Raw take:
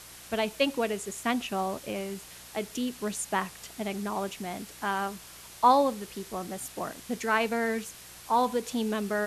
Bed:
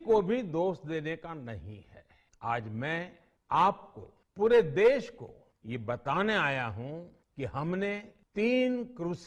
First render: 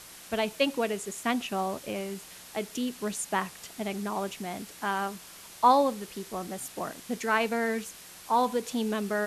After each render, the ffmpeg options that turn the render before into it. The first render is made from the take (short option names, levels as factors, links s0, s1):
-af "bandreject=f=60:t=h:w=4,bandreject=f=120:t=h:w=4"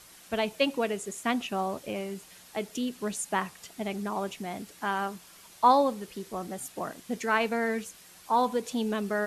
-af "afftdn=nr=6:nf=-48"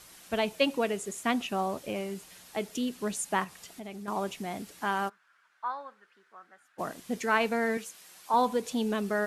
-filter_complex "[0:a]asettb=1/sr,asplit=3[s0][s1][s2];[s0]atrim=end=3.444[s3];[s1]atrim=start=3.44:end=4.08,asetpts=PTS-STARTPTS,afade=t=in:d=0.004:c=qsin,afade=t=out:st=0.636:d=0.004:c=qsin,acompressor=threshold=0.00794:ratio=2.5:attack=3.2:release=140:knee=1:detection=peak[s4];[s2]atrim=start=4.076[s5];[s3][s4]acrossfade=d=0.004:c1=hsin:c2=qsin[s6];[s6][s5]acrossfade=d=0.004:c1=qsin:c2=hsin,asplit=3[s7][s8][s9];[s7]afade=t=out:st=5.08:d=0.02[s10];[s8]bandpass=f=1500:t=q:w=5.4,afade=t=in:st=5.08:d=0.02,afade=t=out:st=6.78:d=0.02[s11];[s9]afade=t=in:st=6.78:d=0.02[s12];[s10][s11][s12]amix=inputs=3:normalize=0,asettb=1/sr,asplit=3[s13][s14][s15];[s13]atrim=end=7.774[s16];[s14]atrim=start=7.77:end=8.34,asetpts=PTS-STARTPTS,afade=t=in:d=0.004:c=qsin,afade=t=out:st=0.566:d=0.004:c=qsin,highpass=f=440:p=1[s17];[s15]atrim=start=8.336[s18];[s16][s17]acrossfade=d=0.004:c1=hsin:c2=qsin[s19];[s19][s18]acrossfade=d=0.004:c1=qsin:c2=hsin"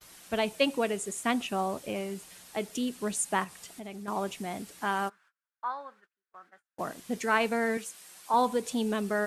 -af "agate=range=0.0282:threshold=0.00158:ratio=16:detection=peak,adynamicequalizer=threshold=0.00141:dfrequency=8700:dqfactor=2.8:tfrequency=8700:tqfactor=2.8:attack=5:release=100:ratio=0.375:range=3:mode=boostabove:tftype=bell"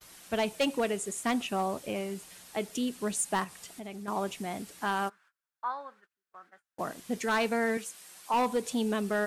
-af "asoftclip=type=hard:threshold=0.0794"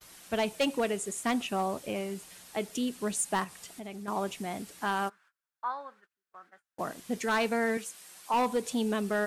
-af anull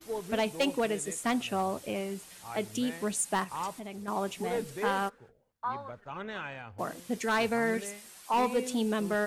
-filter_complex "[1:a]volume=0.282[s0];[0:a][s0]amix=inputs=2:normalize=0"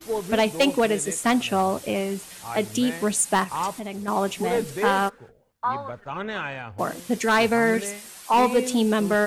-af "volume=2.66"